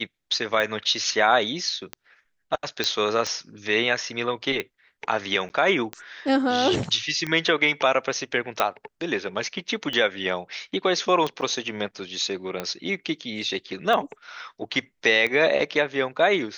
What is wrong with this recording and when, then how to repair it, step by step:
tick 45 rpm -14 dBFS
2.84 s: pop -9 dBFS
5.49–5.50 s: dropout 9.8 ms
8.60 s: pop
11.41–11.42 s: dropout 5.8 ms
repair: de-click; interpolate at 5.49 s, 9.8 ms; interpolate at 11.41 s, 5.8 ms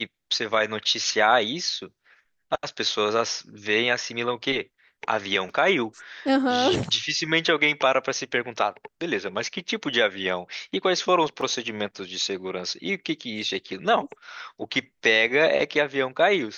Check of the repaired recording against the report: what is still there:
nothing left

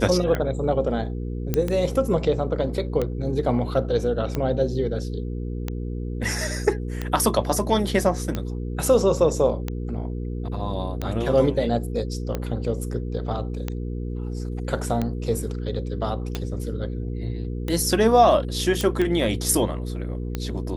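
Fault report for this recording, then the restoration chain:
hum 60 Hz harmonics 8 -29 dBFS
tick 45 rpm -13 dBFS
1.54 s: pop -9 dBFS
18.81 s: pop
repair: de-click; de-hum 60 Hz, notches 8

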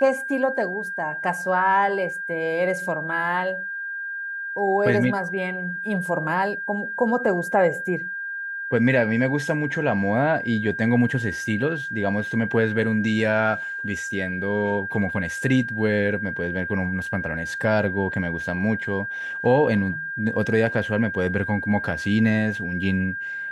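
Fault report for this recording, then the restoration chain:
whine 1.6 kHz -28 dBFS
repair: band-stop 1.6 kHz, Q 30

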